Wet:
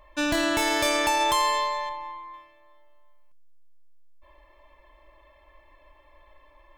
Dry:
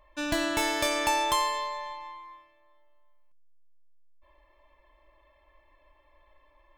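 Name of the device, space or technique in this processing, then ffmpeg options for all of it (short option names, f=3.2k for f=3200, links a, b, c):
clipper into limiter: -filter_complex "[0:a]asoftclip=type=hard:threshold=-16.5dB,alimiter=limit=-21.5dB:level=0:latency=1:release=35,asettb=1/sr,asplit=3[a][b][c];[a]atrim=end=1.894[d];[b]atrim=start=1.89:end=2.34,asetpts=PTS-STARTPTS,afade=t=in:d=0.004:c=qsin,afade=t=out:st=0.446:d=0.004:c=qsin,highshelf=f=2.6k:g=-10.5[e];[c]atrim=start=2.336[f];[d][e]acrossfade=d=0.004:c1=hsin:c2=qsin[g];[g][f]acrossfade=d=0.004:c1=qsin:c2=hsin,volume=6.5dB"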